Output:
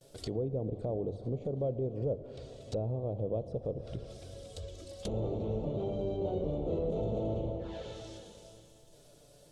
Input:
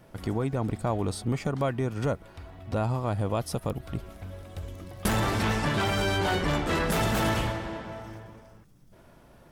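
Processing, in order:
flanger swept by the level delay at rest 8.4 ms, full sweep at −26 dBFS
brickwall limiter −21.5 dBFS, peak gain reduction 6 dB
octave-band graphic EQ 250/500/1,000/2,000/4,000/8,000 Hz −5/+11/−10/−7/+10/+11 dB
noise gate with hold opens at −51 dBFS
mains-hum notches 50/100 Hz
dense smooth reverb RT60 3.7 s, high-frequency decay 0.9×, DRR 11 dB
treble cut that deepens with the level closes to 720 Hz, closed at −26.5 dBFS
high-shelf EQ 6,200 Hz +6.5 dB
level −4.5 dB

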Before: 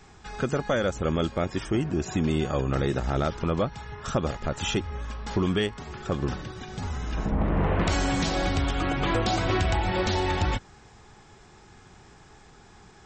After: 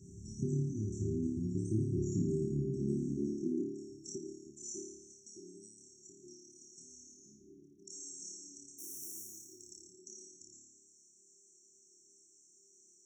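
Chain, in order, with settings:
0:08.78–0:09.24: each half-wave held at its own peak
on a send: flutter between parallel walls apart 4.8 metres, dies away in 0.8 s
on the sum: high-pass filter sweep 99 Hz → 1,100 Hz, 0:01.94–0:05.49
downward compressor 2 to 1, threshold −36 dBFS, peak gain reduction 12.5 dB
brick-wall band-stop 400–5,500 Hz
level −2.5 dB

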